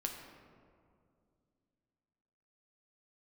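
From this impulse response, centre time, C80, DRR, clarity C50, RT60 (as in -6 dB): 49 ms, 6.0 dB, 1.5 dB, 5.0 dB, 2.3 s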